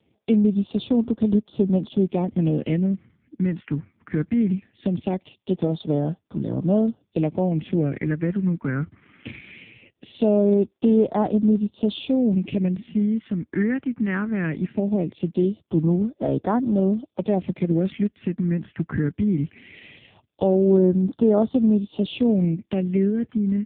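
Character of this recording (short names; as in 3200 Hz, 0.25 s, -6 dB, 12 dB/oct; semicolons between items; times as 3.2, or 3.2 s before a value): phasing stages 4, 0.2 Hz, lowest notch 670–2200 Hz; AMR-NB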